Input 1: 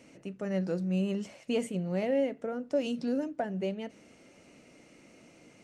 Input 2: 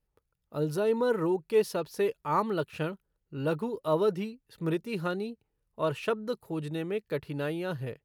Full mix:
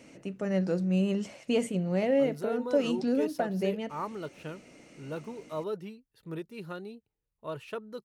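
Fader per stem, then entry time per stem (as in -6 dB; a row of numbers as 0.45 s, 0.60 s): +3.0 dB, -8.5 dB; 0.00 s, 1.65 s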